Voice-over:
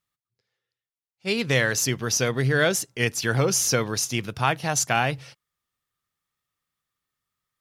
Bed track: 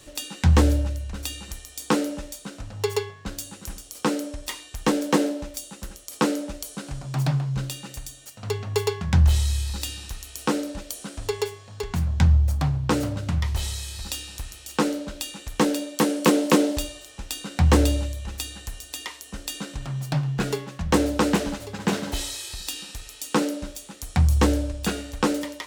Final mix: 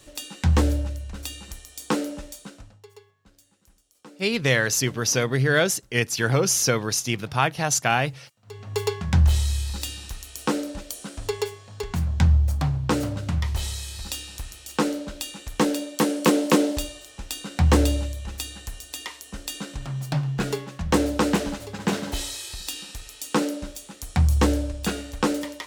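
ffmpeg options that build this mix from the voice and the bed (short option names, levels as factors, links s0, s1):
-filter_complex "[0:a]adelay=2950,volume=1.12[s0];[1:a]volume=10.6,afade=t=out:st=2.4:d=0.41:silence=0.0891251,afade=t=in:st=8.45:d=0.43:silence=0.0707946[s1];[s0][s1]amix=inputs=2:normalize=0"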